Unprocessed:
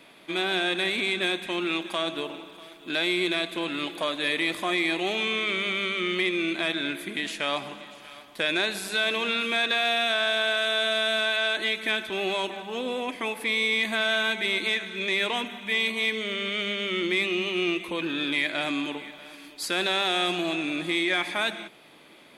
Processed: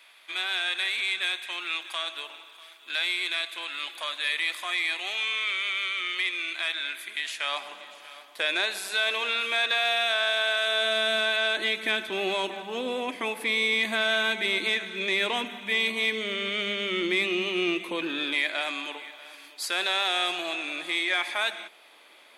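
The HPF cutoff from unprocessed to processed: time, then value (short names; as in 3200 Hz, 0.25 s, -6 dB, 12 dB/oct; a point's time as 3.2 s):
7.28 s 1200 Hz
7.86 s 570 Hz
10.59 s 570 Hz
11.04 s 190 Hz
17.82 s 190 Hz
18.65 s 610 Hz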